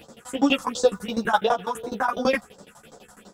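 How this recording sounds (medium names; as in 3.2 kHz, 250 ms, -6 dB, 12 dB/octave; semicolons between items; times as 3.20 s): phasing stages 4, 2.8 Hz, lowest notch 410–2800 Hz; tremolo saw down 12 Hz, depth 100%; a shimmering, thickened sound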